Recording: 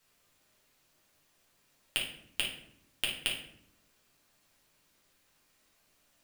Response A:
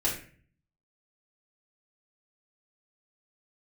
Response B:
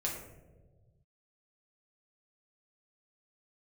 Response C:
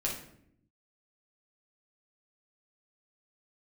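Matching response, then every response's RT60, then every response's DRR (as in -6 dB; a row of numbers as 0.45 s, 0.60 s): C; 0.45 s, 1.3 s, 0.70 s; -7.5 dB, -4.0 dB, -4.0 dB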